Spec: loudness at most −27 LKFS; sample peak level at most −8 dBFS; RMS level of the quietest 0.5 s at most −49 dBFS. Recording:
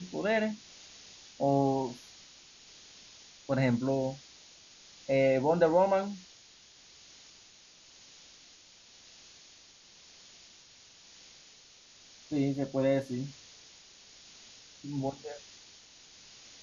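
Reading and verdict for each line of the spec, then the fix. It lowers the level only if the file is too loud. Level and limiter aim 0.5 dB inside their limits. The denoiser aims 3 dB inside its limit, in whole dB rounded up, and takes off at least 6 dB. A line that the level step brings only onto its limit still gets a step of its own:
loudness −30.0 LKFS: in spec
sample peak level −13.5 dBFS: in spec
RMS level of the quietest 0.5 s −57 dBFS: in spec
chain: no processing needed

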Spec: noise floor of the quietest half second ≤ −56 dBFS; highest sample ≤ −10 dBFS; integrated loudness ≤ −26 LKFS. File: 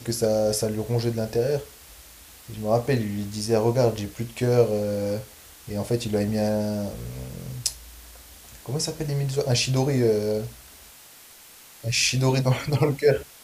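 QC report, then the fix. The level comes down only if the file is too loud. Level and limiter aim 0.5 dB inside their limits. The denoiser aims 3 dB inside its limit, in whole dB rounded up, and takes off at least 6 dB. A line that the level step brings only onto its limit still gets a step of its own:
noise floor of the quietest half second −48 dBFS: out of spec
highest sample −3.5 dBFS: out of spec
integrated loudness −24.5 LKFS: out of spec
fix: broadband denoise 9 dB, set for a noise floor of −48 dBFS
level −2 dB
brickwall limiter −10.5 dBFS

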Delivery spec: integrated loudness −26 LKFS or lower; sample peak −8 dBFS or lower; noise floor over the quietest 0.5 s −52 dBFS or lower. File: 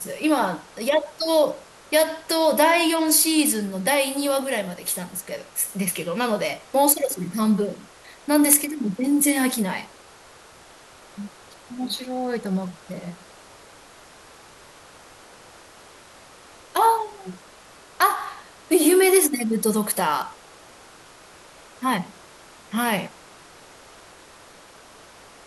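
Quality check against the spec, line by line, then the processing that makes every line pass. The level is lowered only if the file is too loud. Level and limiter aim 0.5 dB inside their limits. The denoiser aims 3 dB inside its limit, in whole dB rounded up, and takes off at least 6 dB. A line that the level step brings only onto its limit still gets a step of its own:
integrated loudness −21.5 LKFS: out of spec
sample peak −3.0 dBFS: out of spec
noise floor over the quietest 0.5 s −48 dBFS: out of spec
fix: level −5 dB
brickwall limiter −8.5 dBFS

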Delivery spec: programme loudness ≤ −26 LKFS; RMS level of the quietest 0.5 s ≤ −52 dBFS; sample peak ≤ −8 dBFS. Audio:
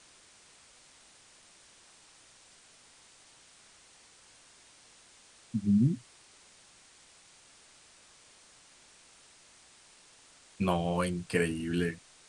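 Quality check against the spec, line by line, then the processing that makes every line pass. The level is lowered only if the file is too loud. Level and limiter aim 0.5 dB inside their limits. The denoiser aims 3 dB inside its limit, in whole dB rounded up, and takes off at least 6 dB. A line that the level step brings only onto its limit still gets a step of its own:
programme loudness −31.0 LKFS: in spec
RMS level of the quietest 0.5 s −59 dBFS: in spec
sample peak −14.5 dBFS: in spec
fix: no processing needed

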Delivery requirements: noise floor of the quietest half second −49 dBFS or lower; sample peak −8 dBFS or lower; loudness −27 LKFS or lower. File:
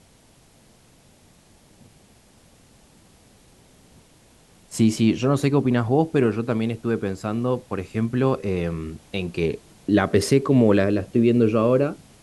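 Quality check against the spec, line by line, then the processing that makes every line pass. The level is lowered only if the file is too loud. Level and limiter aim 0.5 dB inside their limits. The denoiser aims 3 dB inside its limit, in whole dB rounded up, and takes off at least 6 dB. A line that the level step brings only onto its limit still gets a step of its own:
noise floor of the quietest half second −55 dBFS: in spec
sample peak −5.5 dBFS: out of spec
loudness −22.0 LKFS: out of spec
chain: level −5.5 dB

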